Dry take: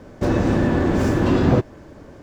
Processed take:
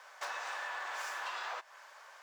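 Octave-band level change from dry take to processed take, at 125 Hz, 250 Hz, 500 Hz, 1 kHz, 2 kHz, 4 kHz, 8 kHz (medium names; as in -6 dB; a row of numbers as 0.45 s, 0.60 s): under -40 dB, under -40 dB, -29.0 dB, -11.5 dB, -8.0 dB, -8.0 dB, -7.5 dB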